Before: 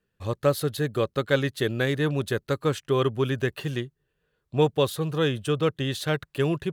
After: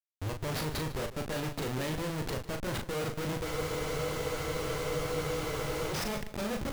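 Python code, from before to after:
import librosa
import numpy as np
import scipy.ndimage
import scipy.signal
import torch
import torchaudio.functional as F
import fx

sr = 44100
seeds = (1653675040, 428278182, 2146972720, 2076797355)

y = fx.pitch_glide(x, sr, semitones=6.5, runs='starting unshifted')
y = fx.schmitt(y, sr, flips_db=-34.0)
y = fx.doubler(y, sr, ms=39.0, db=-5.5)
y = y + 10.0 ** (-15.5 / 20.0) * np.pad(y, (int(150 * sr / 1000.0), 0))[:len(y)]
y = fx.spec_freeze(y, sr, seeds[0], at_s=3.46, hold_s=2.45)
y = F.gain(torch.from_numpy(y), -7.0).numpy()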